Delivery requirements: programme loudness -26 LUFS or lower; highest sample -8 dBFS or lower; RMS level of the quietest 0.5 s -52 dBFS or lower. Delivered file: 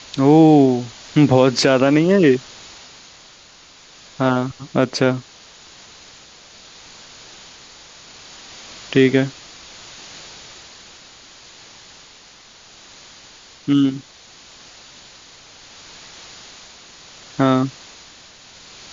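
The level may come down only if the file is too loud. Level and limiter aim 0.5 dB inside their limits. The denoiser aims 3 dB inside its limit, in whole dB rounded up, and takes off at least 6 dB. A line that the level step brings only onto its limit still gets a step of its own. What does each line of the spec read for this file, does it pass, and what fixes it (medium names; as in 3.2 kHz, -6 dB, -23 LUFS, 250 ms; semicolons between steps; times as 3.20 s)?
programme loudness -16.5 LUFS: fail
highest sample -2.5 dBFS: fail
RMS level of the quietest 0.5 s -46 dBFS: fail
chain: trim -10 dB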